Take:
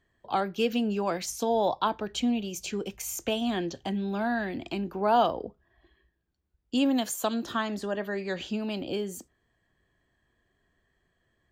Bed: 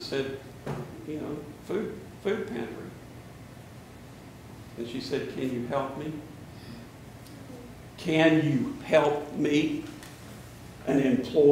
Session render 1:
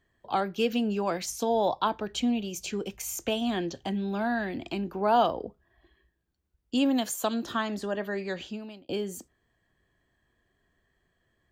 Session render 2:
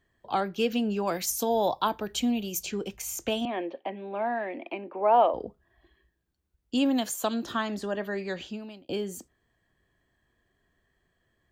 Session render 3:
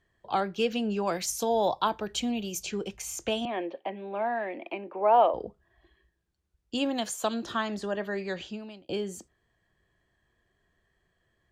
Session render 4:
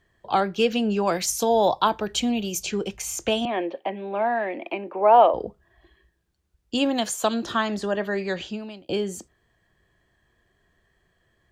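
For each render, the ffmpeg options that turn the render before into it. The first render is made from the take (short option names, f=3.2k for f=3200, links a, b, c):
-filter_complex "[0:a]asplit=2[a][b];[a]atrim=end=8.89,asetpts=PTS-STARTPTS,afade=t=out:st=8.23:d=0.66[c];[b]atrim=start=8.89,asetpts=PTS-STARTPTS,afade=t=in:d=0.004:c=hsin[d];[c][d]concat=n=2:v=0:a=1"
-filter_complex "[0:a]asettb=1/sr,asplit=3[a][b][c];[a]atrim=end=1.074[d];[b]atrim=start=1.07:end=2.63,asetpts=PTS-STARTPTS,afade=t=in:d=0.004:c=qsin,afade=t=out:st=1.556:d=0.004:c=qsin,equalizer=f=14k:w=0.64:g=14[e];[c]atrim=start=2.626[f];[d][e]acrossfade=d=0.004:c1=hsin:c2=qsin[g];[g][f]acrossfade=d=0.004:c1=qsin:c2=hsin,asettb=1/sr,asplit=3[h][i][j];[h]atrim=end=3.454[k];[i]atrim=start=3.45:end=5.34,asetpts=PTS-STARTPTS,afade=t=in:d=0.004:c=qsin,afade=t=out:st=1.886:d=0.004:c=qsin,highpass=f=290:w=0.5412,highpass=f=290:w=1.3066,equalizer=f=390:t=q:w=4:g=-3,equalizer=f=560:t=q:w=4:g=8,equalizer=f=940:t=q:w=4:g=3,equalizer=f=1.5k:t=q:w=4:g=-8,equalizer=f=2.3k:t=q:w=4:g=6,lowpass=f=2.5k:w=0.5412,lowpass=f=2.5k:w=1.3066[l];[j]atrim=start=5.336[m];[k][l]acrossfade=d=0.004:c1=hsin:c2=qsin[n];[n][m]acrossfade=d=0.004:c1=qsin:c2=hsin"
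-af "lowpass=9.6k,equalizer=f=260:w=6.7:g=-8.5"
-af "volume=6dB"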